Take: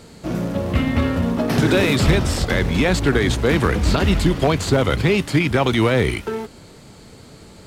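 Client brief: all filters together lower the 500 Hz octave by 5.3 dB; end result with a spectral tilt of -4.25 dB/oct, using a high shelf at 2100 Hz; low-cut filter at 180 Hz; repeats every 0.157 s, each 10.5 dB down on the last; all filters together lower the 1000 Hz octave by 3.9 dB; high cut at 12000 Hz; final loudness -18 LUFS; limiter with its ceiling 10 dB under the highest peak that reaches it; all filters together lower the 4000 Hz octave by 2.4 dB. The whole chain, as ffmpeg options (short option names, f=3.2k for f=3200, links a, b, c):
-af "highpass=180,lowpass=12k,equalizer=f=500:t=o:g=-6,equalizer=f=1k:t=o:g=-4.5,highshelf=f=2.1k:g=6,equalizer=f=4k:t=o:g=-8.5,alimiter=limit=-18.5dB:level=0:latency=1,aecho=1:1:157|314|471:0.299|0.0896|0.0269,volume=9dB"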